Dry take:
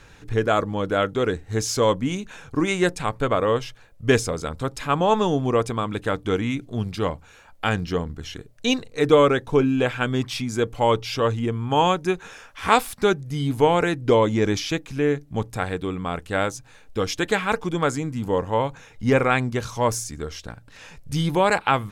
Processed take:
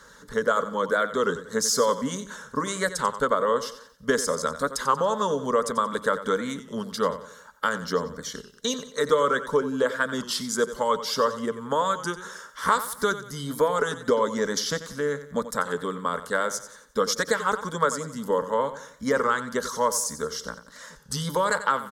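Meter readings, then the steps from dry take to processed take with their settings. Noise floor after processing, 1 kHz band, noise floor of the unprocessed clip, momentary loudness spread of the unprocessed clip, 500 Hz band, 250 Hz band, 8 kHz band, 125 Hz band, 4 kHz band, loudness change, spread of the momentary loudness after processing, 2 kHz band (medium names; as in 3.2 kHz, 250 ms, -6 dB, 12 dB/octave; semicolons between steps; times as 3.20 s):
-51 dBFS, -1.5 dB, -49 dBFS, 10 LU, -3.0 dB, -7.0 dB, +4.0 dB, -12.5 dB, -2.0 dB, -3.0 dB, 9 LU, -1.5 dB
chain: high-pass 41 Hz; harmonic-percussive split harmonic -7 dB; bass shelf 320 Hz -9.5 dB; compression 2.5:1, threshold -27 dBFS, peak gain reduction 10 dB; static phaser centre 500 Hz, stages 8; on a send: feedback delay 90 ms, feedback 40%, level -13 dB; on the sum: warped record 33 1/3 rpm, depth 100 cents; trim +8.5 dB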